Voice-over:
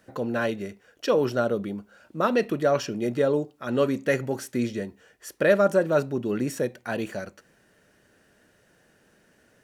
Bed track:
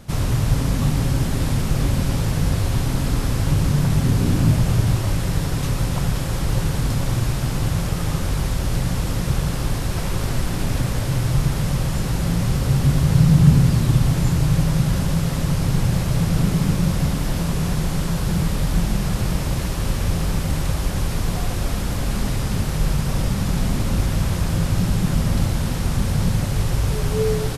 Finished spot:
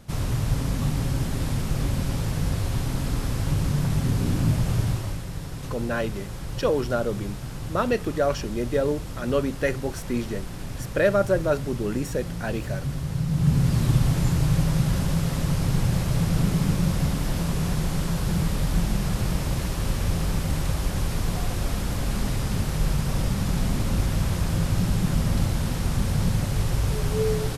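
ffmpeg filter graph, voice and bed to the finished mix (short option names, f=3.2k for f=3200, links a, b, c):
-filter_complex "[0:a]adelay=5550,volume=-1dB[a];[1:a]volume=3dB,afade=t=out:st=4.83:d=0.42:silence=0.473151,afade=t=in:st=13.28:d=0.56:silence=0.375837[b];[a][b]amix=inputs=2:normalize=0"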